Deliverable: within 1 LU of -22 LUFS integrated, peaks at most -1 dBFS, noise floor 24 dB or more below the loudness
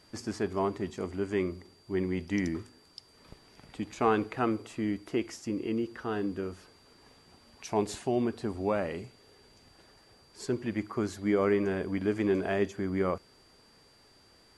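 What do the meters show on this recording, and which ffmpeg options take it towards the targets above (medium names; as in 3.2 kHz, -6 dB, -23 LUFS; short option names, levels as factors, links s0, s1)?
steady tone 4.7 kHz; tone level -62 dBFS; loudness -32.0 LUFS; peak level -13.0 dBFS; loudness target -22.0 LUFS
-> -af "bandreject=f=4700:w=30"
-af "volume=3.16"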